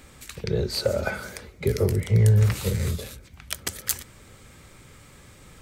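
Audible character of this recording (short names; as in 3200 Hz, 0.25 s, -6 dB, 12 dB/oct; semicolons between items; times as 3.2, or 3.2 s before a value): noise floor -51 dBFS; spectral tilt -5.0 dB/oct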